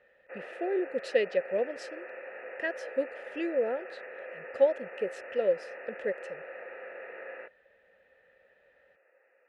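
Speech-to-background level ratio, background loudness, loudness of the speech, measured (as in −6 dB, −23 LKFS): 11.5 dB, −43.0 LKFS, −31.5 LKFS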